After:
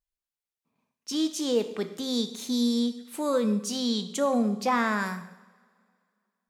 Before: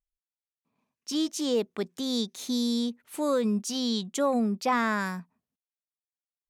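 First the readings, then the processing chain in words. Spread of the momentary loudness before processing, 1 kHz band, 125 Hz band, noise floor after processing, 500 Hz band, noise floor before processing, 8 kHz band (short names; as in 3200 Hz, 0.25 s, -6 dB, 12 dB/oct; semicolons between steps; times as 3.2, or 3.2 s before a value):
7 LU, +0.5 dB, n/a, under -85 dBFS, +1.0 dB, under -85 dBFS, +1.0 dB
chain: two-slope reverb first 0.78 s, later 2.4 s, from -20 dB, DRR 8 dB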